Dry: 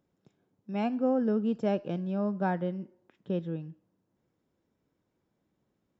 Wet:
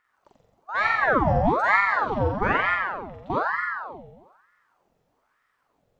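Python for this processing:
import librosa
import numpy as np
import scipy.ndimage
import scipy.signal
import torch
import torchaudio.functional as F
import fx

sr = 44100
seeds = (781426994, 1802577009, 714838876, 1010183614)

y = fx.room_flutter(x, sr, wall_m=7.7, rt60_s=1.3)
y = fx.ring_lfo(y, sr, carrier_hz=940.0, swing_pct=70, hz=1.1)
y = F.gain(torch.from_numpy(y), 6.0).numpy()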